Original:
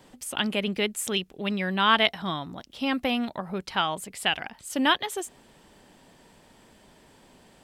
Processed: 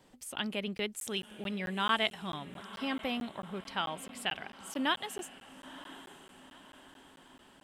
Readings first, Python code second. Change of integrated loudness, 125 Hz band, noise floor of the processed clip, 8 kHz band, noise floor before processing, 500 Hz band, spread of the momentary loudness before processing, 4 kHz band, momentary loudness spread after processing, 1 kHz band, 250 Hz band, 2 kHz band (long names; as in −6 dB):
−8.5 dB, −8.5 dB, −59 dBFS, −8.5 dB, −57 dBFS, −8.5 dB, 11 LU, −8.5 dB, 21 LU, −8.5 dB, −8.5 dB, −8.5 dB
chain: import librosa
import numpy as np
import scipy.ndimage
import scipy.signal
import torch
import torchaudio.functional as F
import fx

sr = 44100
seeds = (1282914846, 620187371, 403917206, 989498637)

y = fx.echo_diffused(x, sr, ms=954, feedback_pct=51, wet_db=-15.5)
y = fx.buffer_crackle(y, sr, first_s=0.78, period_s=0.22, block=512, kind='zero')
y = F.gain(torch.from_numpy(y), -8.5).numpy()